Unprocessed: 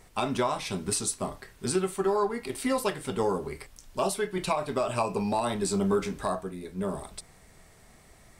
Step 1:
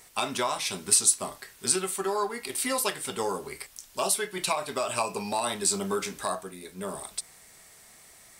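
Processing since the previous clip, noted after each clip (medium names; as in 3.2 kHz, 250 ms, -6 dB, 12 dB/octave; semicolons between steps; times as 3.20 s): tilt EQ +3 dB/octave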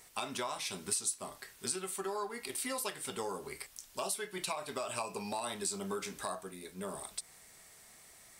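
compression 2:1, threshold -33 dBFS, peak gain reduction 9.5 dB; trim -4.5 dB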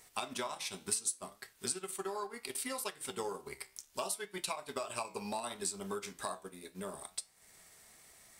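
transient shaper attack +3 dB, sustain -9 dB; flange 0.68 Hz, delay 8.7 ms, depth 7.1 ms, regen +82%; trim +2.5 dB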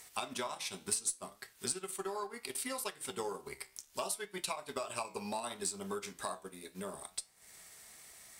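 Chebyshev shaper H 2 -26 dB, 6 -44 dB, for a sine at -18.5 dBFS; tape noise reduction on one side only encoder only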